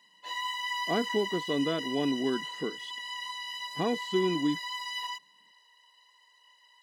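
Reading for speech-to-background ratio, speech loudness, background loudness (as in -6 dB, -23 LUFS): 4.0 dB, -31.5 LUFS, -35.5 LUFS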